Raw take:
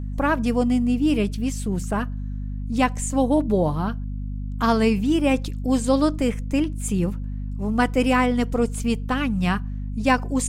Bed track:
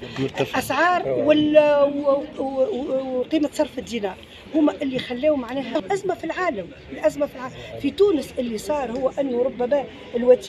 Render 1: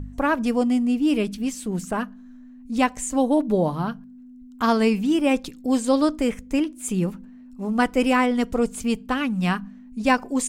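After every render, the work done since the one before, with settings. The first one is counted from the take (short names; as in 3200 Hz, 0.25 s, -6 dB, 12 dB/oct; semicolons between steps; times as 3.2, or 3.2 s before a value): de-hum 50 Hz, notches 4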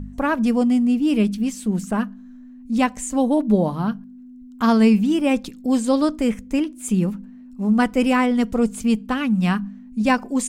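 bell 210 Hz +9 dB 0.33 oct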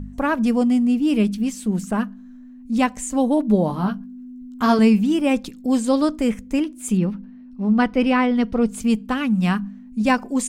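3.68–4.79 doubler 16 ms -3.5 dB; 6.97–8.69 polynomial smoothing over 15 samples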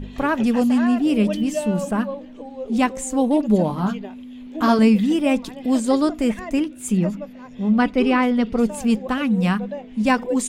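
add bed track -11.5 dB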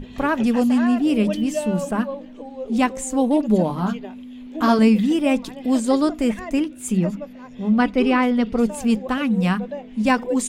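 notches 50/100/150/200 Hz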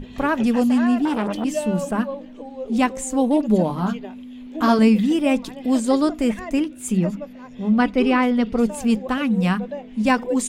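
1.05–1.45 core saturation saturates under 1000 Hz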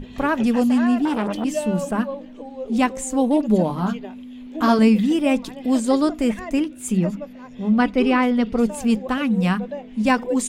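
nothing audible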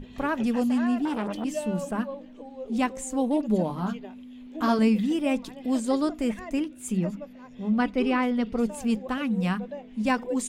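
gain -6.5 dB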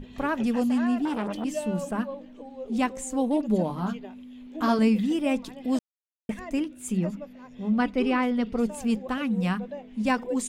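5.79–6.29 mute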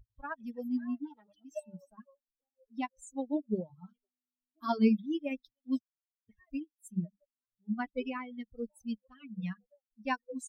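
per-bin expansion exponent 3; upward expander 1.5:1, over -44 dBFS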